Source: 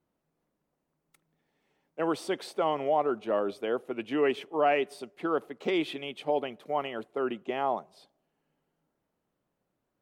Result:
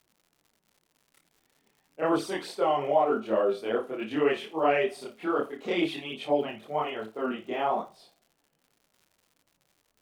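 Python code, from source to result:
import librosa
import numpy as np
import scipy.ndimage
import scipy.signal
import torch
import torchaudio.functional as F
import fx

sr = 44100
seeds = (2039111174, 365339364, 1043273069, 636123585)

y = fx.room_flutter(x, sr, wall_m=4.7, rt60_s=0.26)
y = fx.chorus_voices(y, sr, voices=2, hz=1.2, base_ms=26, depth_ms=3.1, mix_pct=65)
y = fx.dmg_crackle(y, sr, seeds[0], per_s=160.0, level_db=-54.0)
y = F.gain(torch.from_numpy(y), 3.5).numpy()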